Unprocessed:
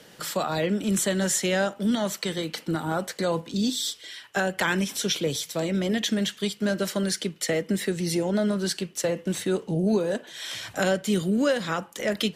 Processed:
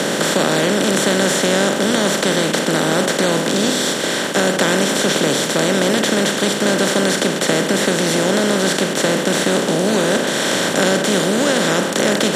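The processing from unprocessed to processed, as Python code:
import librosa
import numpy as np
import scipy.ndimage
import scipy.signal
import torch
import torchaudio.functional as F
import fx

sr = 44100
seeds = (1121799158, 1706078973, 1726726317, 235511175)

y = fx.bin_compress(x, sr, power=0.2)
y = scipy.signal.sosfilt(scipy.signal.butter(2, 110.0, 'highpass', fs=sr, output='sos'), y)
y = fx.high_shelf(y, sr, hz=9700.0, db=-5.5)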